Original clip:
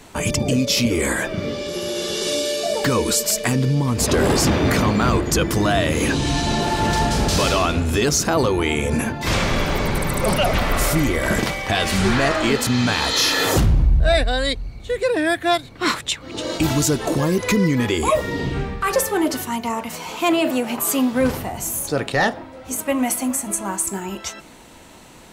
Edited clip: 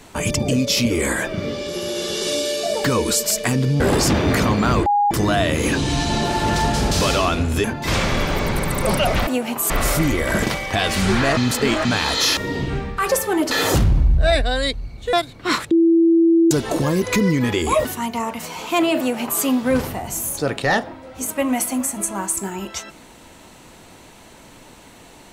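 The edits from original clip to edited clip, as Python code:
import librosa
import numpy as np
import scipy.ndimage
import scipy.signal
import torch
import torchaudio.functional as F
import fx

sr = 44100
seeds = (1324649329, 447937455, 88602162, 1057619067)

y = fx.edit(x, sr, fx.cut(start_s=3.8, length_s=0.37),
    fx.bleep(start_s=5.23, length_s=0.25, hz=820.0, db=-13.5),
    fx.cut(start_s=8.01, length_s=1.02),
    fx.reverse_span(start_s=12.33, length_s=0.48),
    fx.cut(start_s=14.95, length_s=0.54),
    fx.bleep(start_s=16.07, length_s=0.8, hz=332.0, db=-10.5),
    fx.move(start_s=18.21, length_s=1.14, to_s=13.33),
    fx.duplicate(start_s=20.49, length_s=0.43, to_s=10.66), tone=tone)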